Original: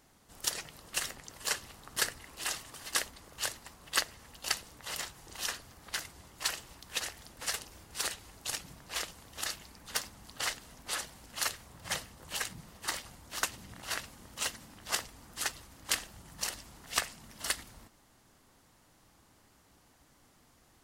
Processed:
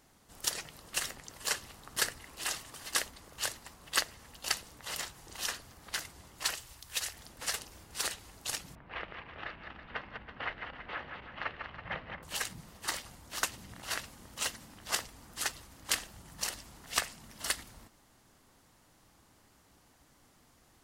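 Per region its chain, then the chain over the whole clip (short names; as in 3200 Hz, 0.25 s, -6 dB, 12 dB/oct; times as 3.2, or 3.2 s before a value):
6.55–7.14 EQ curve 120 Hz 0 dB, 190 Hz -9 dB, 12000 Hz +4 dB + overloaded stage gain 22.5 dB
8.75–12.23 regenerating reverse delay 0.164 s, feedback 53%, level -6 dB + inverse Chebyshev low-pass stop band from 7800 Hz, stop band 60 dB
whole clip: dry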